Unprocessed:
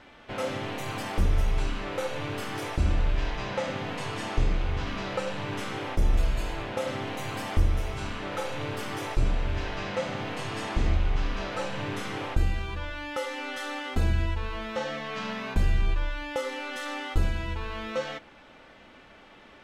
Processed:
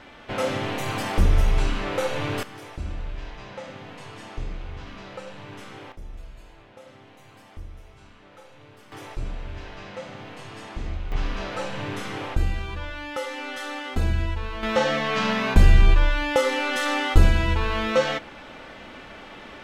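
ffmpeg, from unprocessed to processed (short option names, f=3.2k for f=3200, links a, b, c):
-af "asetnsamples=n=441:p=0,asendcmd='2.43 volume volume -7.5dB;5.92 volume volume -16.5dB;8.92 volume volume -6.5dB;11.12 volume volume 1.5dB;14.63 volume volume 10dB',volume=5.5dB"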